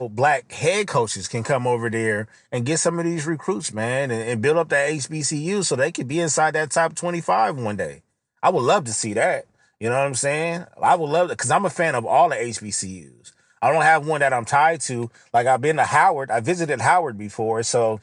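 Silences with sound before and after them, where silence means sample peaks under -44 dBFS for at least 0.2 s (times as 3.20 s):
7.99–8.43 s
9.44–9.81 s
13.33–13.62 s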